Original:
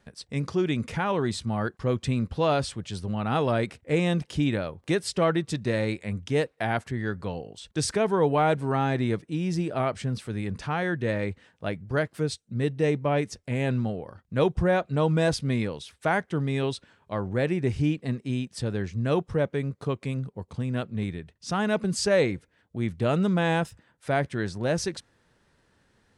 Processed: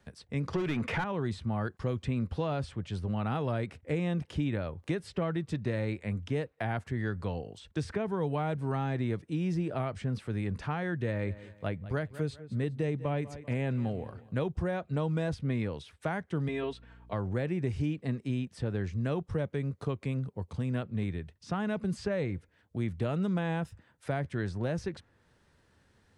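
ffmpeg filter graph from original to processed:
-filter_complex "[0:a]asettb=1/sr,asplit=3[a][b][c];[a]atrim=end=0.534[d];[b]atrim=start=0.53:end=1.04,asetpts=PTS-STARTPTS,afade=t=in:d=0.004:c=qsin,afade=t=out:st=0.506:d=0.004:c=qsin,highpass=53,asplit=2[e][f];[f]highpass=f=720:p=1,volume=22dB,asoftclip=type=tanh:threshold=-15dB[g];[e][g]amix=inputs=2:normalize=0,lowpass=f=6k:p=1,volume=-6dB[h];[c]atrim=start=1.036[i];[d][h]acrossfade=d=0.004:c1=hsin:c2=qsin[j];[j][i]acrossfade=d=0.004:c1=qsin:c2=hsin,asettb=1/sr,asplit=3[k][l][m];[k]atrim=end=11.044[n];[l]atrim=start=11.04:end=14.45,asetpts=PTS-STARTPTS,afade=t=in:d=0.004:c=qsin,afade=t=out:st=3.406:d=0.004:c=qsin,bandreject=f=5.5k:w=8.1,aecho=1:1:195|390|585:0.112|0.037|0.0122,atrim=end_sample=150381[o];[m]atrim=start=14.446[p];[n][o]acrossfade=d=0.004:c1=hsin:c2=qsin[q];[q][p]acrossfade=d=0.004:c1=qsin:c2=hsin,asettb=1/sr,asplit=3[r][s][t];[r]atrim=end=16.484[u];[s]atrim=start=16.48:end=17.13,asetpts=PTS-STARTPTS,afade=t=in:d=0.004:c=qsin,afade=t=out:st=0.646:d=0.004:c=qsin,bass=f=250:g=-12,treble=f=4k:g=-7,aecho=1:1:4.4:0.82,atrim=end_sample=28665,aeval=exprs='val(0)+0.00224*(sin(2*PI*60*n/s)+sin(2*PI*2*60*n/s)/2+sin(2*PI*3*60*n/s)/3+sin(2*PI*4*60*n/s)/4+sin(2*PI*5*60*n/s)/5)':c=same[v];[t]atrim=start=17.126[w];[u][v]acrossfade=d=0.004:c1=hsin:c2=qsin[x];[x][w]acrossfade=d=0.004:c1=qsin:c2=hsin,equalizer=f=84:t=o:w=0.77:g=6,acrossover=split=190|2900[y][z][aa];[y]acompressor=threshold=-31dB:ratio=4[ab];[z]acompressor=threshold=-30dB:ratio=4[ac];[aa]acompressor=threshold=-55dB:ratio=4[ad];[ab][ac][ad]amix=inputs=3:normalize=0,volume=-2dB"

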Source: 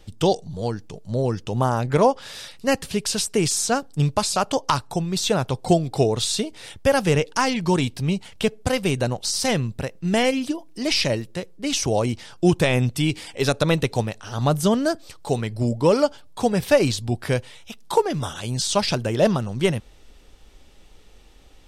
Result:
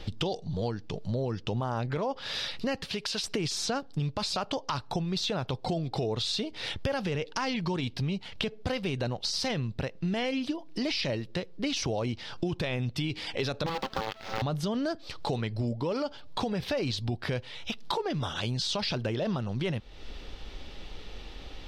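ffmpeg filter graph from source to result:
-filter_complex "[0:a]asettb=1/sr,asplit=3[a][b][c];[a]atrim=end=2.844[d];[b]atrim=start=2.84:end=3.24,asetpts=PTS-STARTPTS,afade=t=in:d=0.004:c=qsin,afade=t=out:st=0.396:d=0.004:c=qsin,lowshelf=f=380:g=-9.5,acompressor=threshold=-32dB:ratio=2:attack=3.2:release=140:knee=1:detection=peak[e];[c]atrim=start=3.236[f];[d][e]acrossfade=d=0.004:c1=hsin:c2=qsin[g];[g][f]acrossfade=d=0.004:c1=qsin:c2=hsin,asettb=1/sr,asplit=3[h][i][j];[h]atrim=end=13.664[k];[i]atrim=start=13.66:end=14.42,asetpts=PTS-STARTPTS,afade=t=in:d=0.004:c=qsin,afade=t=out:st=0.756:d=0.004:c=qsin,aeval=exprs='val(0)*sin(2*PI*660*n/s)':c=same,acrusher=bits=5:dc=4:mix=0:aa=0.000001[l];[j]atrim=start=14.416[m];[k][l]acrossfade=d=0.004:c1=hsin:c2=qsin[n];[n][m]acrossfade=d=0.004:c1=qsin:c2=hsin,highshelf=f=6.1k:t=q:w=1.5:g=-12.5,alimiter=limit=-15.5dB:level=0:latency=1:release=19,acompressor=threshold=-39dB:ratio=4,volume=8dB"

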